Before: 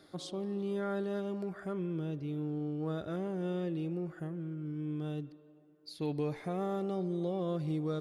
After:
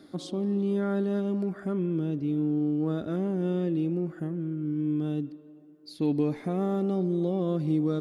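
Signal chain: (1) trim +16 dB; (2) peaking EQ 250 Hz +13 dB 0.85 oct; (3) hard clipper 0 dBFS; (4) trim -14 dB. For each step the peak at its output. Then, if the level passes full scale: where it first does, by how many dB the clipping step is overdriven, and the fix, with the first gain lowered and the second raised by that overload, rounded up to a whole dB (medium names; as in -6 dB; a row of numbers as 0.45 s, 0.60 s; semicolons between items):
-9.0 dBFS, -2.5 dBFS, -2.5 dBFS, -16.5 dBFS; nothing clips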